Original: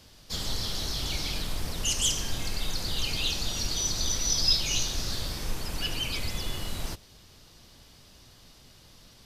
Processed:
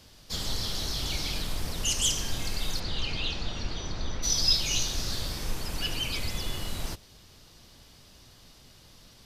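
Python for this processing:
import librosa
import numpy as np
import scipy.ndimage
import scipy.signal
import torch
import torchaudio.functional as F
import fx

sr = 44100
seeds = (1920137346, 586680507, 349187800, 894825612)

y = fx.lowpass(x, sr, hz=fx.line((2.79, 4400.0), (4.22, 2000.0)), slope=12, at=(2.79, 4.22), fade=0.02)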